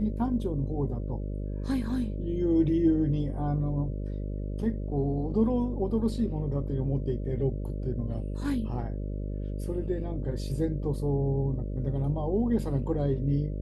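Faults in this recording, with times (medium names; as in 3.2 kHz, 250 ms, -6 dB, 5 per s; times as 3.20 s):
buzz 50 Hz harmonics 12 -33 dBFS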